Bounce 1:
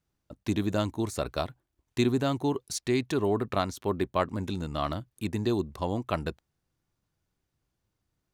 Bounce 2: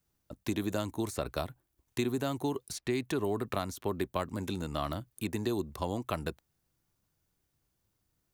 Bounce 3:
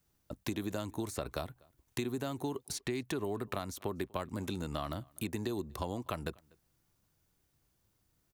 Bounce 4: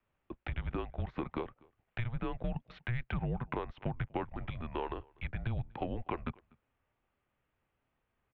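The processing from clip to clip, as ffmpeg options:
-filter_complex "[0:a]highshelf=f=8.8k:g=12,acrossover=split=270|3300|6900[a][b][c][d];[a]acompressor=threshold=-37dB:ratio=4[e];[b]acompressor=threshold=-31dB:ratio=4[f];[c]acompressor=threshold=-51dB:ratio=4[g];[d]acompressor=threshold=-47dB:ratio=4[h];[e][f][g][h]amix=inputs=4:normalize=0"
-filter_complex "[0:a]acompressor=threshold=-39dB:ratio=2.5,asplit=2[a][b];[b]adelay=244.9,volume=-27dB,highshelf=f=4k:g=-5.51[c];[a][c]amix=inputs=2:normalize=0,volume=3dB"
-af "aeval=exprs='clip(val(0),-1,0.0355)':c=same,highpass=f=230:t=q:w=0.5412,highpass=f=230:t=q:w=1.307,lowpass=f=3k:t=q:w=0.5176,lowpass=f=3k:t=q:w=0.7071,lowpass=f=3k:t=q:w=1.932,afreqshift=-250,volume=2.5dB"

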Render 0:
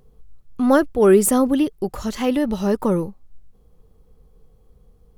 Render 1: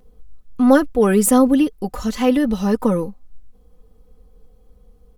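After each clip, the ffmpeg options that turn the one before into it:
-af "aecho=1:1:4:0.67"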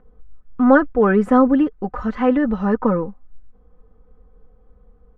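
-af "lowpass=f=1.5k:t=q:w=2,volume=-1dB"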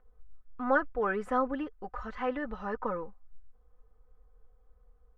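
-af "equalizer=f=200:w=0.62:g=-14,volume=-8.5dB"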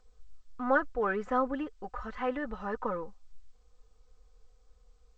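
-ar 16000 -c:a g722

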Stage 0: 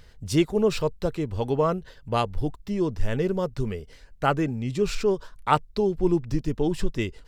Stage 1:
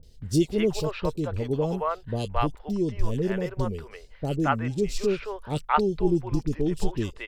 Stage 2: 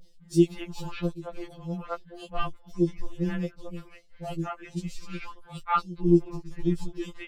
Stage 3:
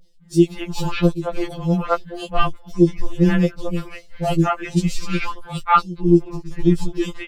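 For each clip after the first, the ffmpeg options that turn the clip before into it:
-filter_complex "[0:a]acrossover=split=560|3200[a][b][c];[c]adelay=30[d];[b]adelay=220[e];[a][e][d]amix=inputs=3:normalize=0"
-af "tremolo=f=2.1:d=0.67,afftfilt=real='re*2.83*eq(mod(b,8),0)':imag='im*2.83*eq(mod(b,8),0)':win_size=2048:overlap=0.75"
-af "dynaudnorm=f=110:g=5:m=16dB,volume=-1dB"

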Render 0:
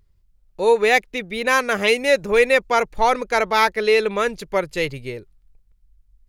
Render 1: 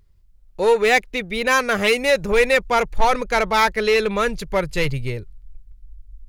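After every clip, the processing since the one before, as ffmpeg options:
-filter_complex "[0:a]asubboost=boost=4:cutoff=150,asplit=2[a][b];[b]aeval=exprs='0.119*(abs(mod(val(0)/0.119+3,4)-2)-1)':c=same,volume=-8.5dB[c];[a][c]amix=inputs=2:normalize=0"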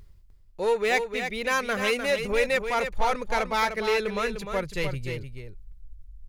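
-af "areverse,acompressor=mode=upward:threshold=-26dB:ratio=2.5,areverse,aecho=1:1:302:0.422,volume=-8dB"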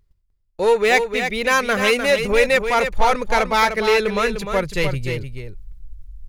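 -af "agate=range=-21dB:threshold=-45dB:ratio=16:detection=peak,volume=8dB"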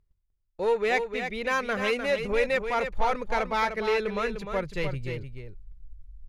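-af "lowpass=f=3k:p=1,volume=-8.5dB"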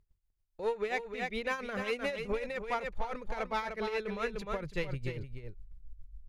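-af "acompressor=threshold=-28dB:ratio=6,tremolo=f=7.3:d=0.68"

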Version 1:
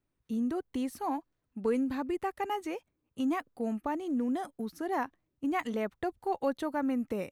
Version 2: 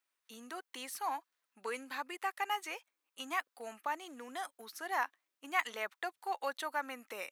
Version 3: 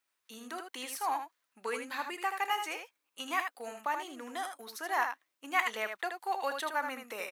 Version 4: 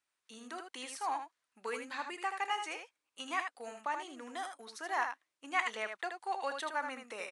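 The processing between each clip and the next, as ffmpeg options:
-af "highpass=1.2k,volume=5dB"
-af "aecho=1:1:32|79:0.141|0.473,volume=3dB"
-af "aresample=22050,aresample=44100,volume=-3dB"

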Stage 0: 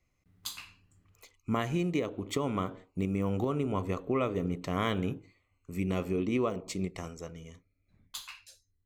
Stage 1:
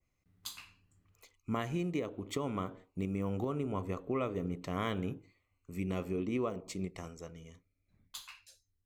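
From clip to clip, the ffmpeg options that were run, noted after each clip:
-af "adynamicequalizer=threshold=0.00251:dfrequency=3900:dqfactor=0.87:tfrequency=3900:tqfactor=0.87:attack=5:release=100:ratio=0.375:range=2:mode=cutabove:tftype=bell,volume=-4.5dB"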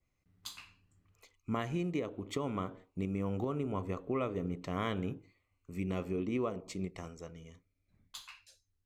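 -af "highshelf=f=11k:g=-10.5"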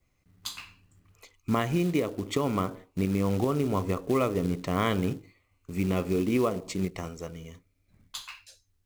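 -af "acrusher=bits=5:mode=log:mix=0:aa=0.000001,volume=8.5dB"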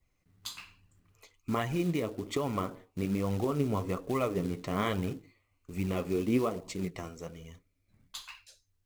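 -af "flanger=delay=1:depth=8.2:regen=52:speed=1.2:shape=sinusoidal"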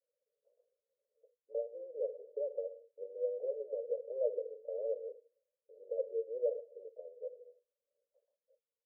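-af "asuperpass=centerf=520:order=8:qfactor=3.5,volume=3dB"

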